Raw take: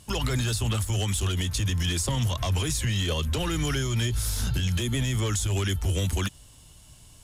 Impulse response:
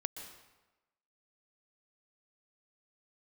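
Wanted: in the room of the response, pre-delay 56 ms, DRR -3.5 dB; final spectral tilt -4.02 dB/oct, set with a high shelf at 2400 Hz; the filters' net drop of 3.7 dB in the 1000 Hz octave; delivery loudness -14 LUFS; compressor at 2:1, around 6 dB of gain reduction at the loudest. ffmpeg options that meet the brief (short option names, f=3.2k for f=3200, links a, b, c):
-filter_complex "[0:a]equalizer=f=1k:t=o:g=-6,highshelf=f=2.4k:g=5.5,acompressor=threshold=-33dB:ratio=2,asplit=2[a][b];[1:a]atrim=start_sample=2205,adelay=56[c];[b][c]afir=irnorm=-1:irlink=0,volume=3.5dB[d];[a][d]amix=inputs=2:normalize=0,volume=12dB"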